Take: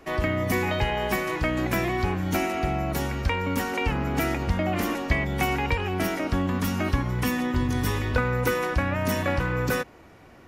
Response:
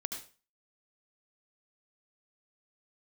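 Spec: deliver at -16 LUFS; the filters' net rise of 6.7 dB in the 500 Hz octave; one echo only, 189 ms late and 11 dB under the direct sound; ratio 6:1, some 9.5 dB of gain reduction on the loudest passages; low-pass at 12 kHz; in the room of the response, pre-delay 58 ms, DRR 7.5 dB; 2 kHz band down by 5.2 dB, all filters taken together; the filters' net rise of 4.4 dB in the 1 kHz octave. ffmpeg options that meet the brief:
-filter_complex "[0:a]lowpass=12000,equalizer=f=500:t=o:g=7.5,equalizer=f=1000:t=o:g=5,equalizer=f=2000:t=o:g=-9,acompressor=threshold=0.0501:ratio=6,aecho=1:1:189:0.282,asplit=2[s0][s1];[1:a]atrim=start_sample=2205,adelay=58[s2];[s1][s2]afir=irnorm=-1:irlink=0,volume=0.398[s3];[s0][s3]amix=inputs=2:normalize=0,volume=4.47"

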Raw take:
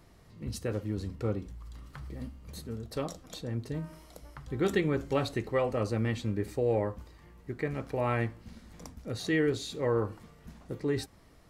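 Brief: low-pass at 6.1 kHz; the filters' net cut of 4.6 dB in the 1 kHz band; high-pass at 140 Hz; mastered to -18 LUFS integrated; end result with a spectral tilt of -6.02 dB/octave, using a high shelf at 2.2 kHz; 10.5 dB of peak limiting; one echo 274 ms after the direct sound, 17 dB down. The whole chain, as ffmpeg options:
-af "highpass=140,lowpass=6100,equalizer=f=1000:t=o:g=-5.5,highshelf=f=2200:g=-3.5,alimiter=level_in=1.33:limit=0.0631:level=0:latency=1,volume=0.75,aecho=1:1:274:0.141,volume=11.2"

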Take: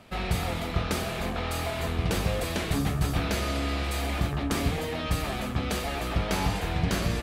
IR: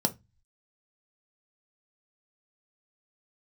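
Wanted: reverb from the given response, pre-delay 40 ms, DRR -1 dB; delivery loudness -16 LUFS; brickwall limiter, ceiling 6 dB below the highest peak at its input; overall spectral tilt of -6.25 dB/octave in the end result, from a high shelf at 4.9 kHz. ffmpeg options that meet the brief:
-filter_complex "[0:a]highshelf=f=4900:g=-7,alimiter=limit=0.0944:level=0:latency=1,asplit=2[s0][s1];[1:a]atrim=start_sample=2205,adelay=40[s2];[s1][s2]afir=irnorm=-1:irlink=0,volume=0.447[s3];[s0][s3]amix=inputs=2:normalize=0,volume=2.51"

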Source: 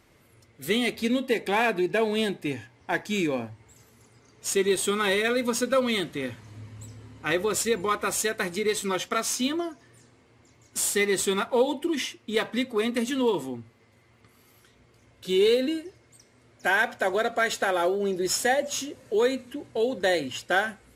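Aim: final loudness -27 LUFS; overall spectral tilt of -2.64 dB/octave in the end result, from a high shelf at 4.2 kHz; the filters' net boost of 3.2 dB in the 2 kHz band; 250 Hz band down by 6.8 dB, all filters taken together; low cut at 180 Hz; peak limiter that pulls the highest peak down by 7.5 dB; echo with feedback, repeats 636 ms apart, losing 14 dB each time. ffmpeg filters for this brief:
-af "highpass=180,equalizer=f=250:t=o:g=-8,equalizer=f=2000:t=o:g=3.5,highshelf=f=4200:g=3,alimiter=limit=0.141:level=0:latency=1,aecho=1:1:636|1272:0.2|0.0399,volume=1.12"

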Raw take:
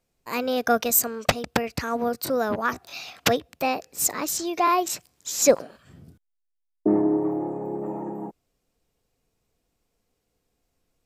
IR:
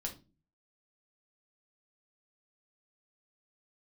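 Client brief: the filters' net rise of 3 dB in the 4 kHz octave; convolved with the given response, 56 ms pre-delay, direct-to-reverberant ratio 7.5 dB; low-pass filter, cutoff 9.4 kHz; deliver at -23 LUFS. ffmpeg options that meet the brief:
-filter_complex "[0:a]lowpass=9400,equalizer=f=4000:t=o:g=4,asplit=2[s0][s1];[1:a]atrim=start_sample=2205,adelay=56[s2];[s1][s2]afir=irnorm=-1:irlink=0,volume=0.447[s3];[s0][s3]amix=inputs=2:normalize=0,volume=1.12"

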